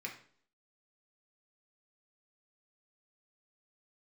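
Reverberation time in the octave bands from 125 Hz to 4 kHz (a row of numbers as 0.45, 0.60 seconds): 0.55, 0.60, 0.55, 0.50, 0.45, 0.50 seconds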